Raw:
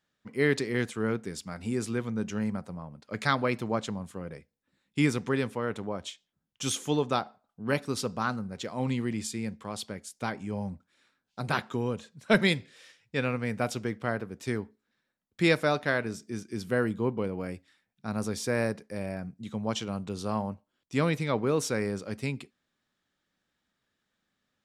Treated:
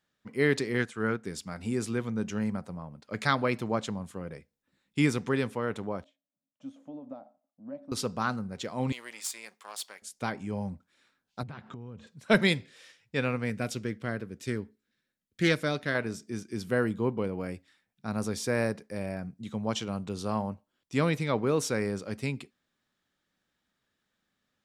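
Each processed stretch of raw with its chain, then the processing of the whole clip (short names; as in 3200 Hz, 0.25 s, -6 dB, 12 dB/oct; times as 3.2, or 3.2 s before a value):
0.78–1.25 LPF 11000 Hz 24 dB/oct + bell 1500 Hz +6.5 dB 0.65 oct + upward expander, over -37 dBFS
6.04–7.92 compressor 4:1, threshold -30 dBFS + double band-pass 400 Hz, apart 1.1 oct
8.92–10.02 half-wave gain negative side -7 dB + HPF 880 Hz + high shelf 7000 Hz +8.5 dB
11.43–12.07 tone controls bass +10 dB, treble -10 dB + compressor, threshold -40 dBFS + LPF 8800 Hz 24 dB/oct
13.5–15.95 bell 850 Hz -9.5 dB 1.2 oct + notch 1200 Hz, Q 26 + Doppler distortion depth 0.13 ms
whole clip: dry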